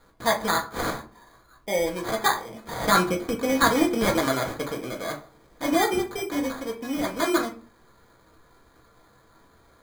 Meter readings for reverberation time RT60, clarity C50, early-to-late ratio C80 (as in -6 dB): 0.40 s, 12.0 dB, 18.0 dB